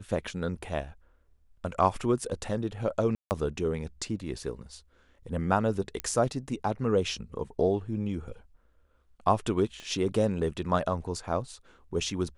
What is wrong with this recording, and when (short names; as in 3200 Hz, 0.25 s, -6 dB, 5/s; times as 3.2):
3.15–3.31 gap 0.159 s
6 pop -14 dBFS
9.8 pop -28 dBFS